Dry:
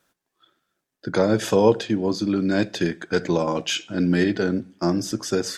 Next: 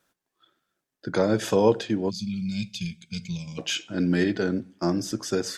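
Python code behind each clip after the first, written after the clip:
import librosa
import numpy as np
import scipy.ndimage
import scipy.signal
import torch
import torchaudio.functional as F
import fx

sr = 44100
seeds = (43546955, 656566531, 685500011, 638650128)

y = fx.spec_box(x, sr, start_s=2.1, length_s=1.48, low_hz=230.0, high_hz=2100.0, gain_db=-29)
y = y * 10.0 ** (-3.0 / 20.0)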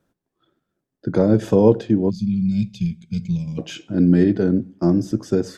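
y = fx.tilt_shelf(x, sr, db=9.5, hz=710.0)
y = y * 10.0 ** (1.5 / 20.0)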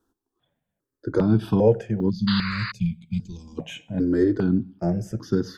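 y = fx.spec_paint(x, sr, seeds[0], shape='noise', start_s=2.27, length_s=0.45, low_hz=890.0, high_hz=4900.0, level_db=-26.0)
y = fx.phaser_held(y, sr, hz=2.5, low_hz=590.0, high_hz=2400.0)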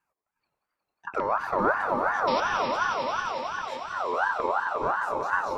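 y = fx.echo_swell(x, sr, ms=90, loudest=5, wet_db=-9.0)
y = fx.ring_lfo(y, sr, carrier_hz=1000.0, swing_pct=30, hz=2.8)
y = y * 10.0 ** (-5.0 / 20.0)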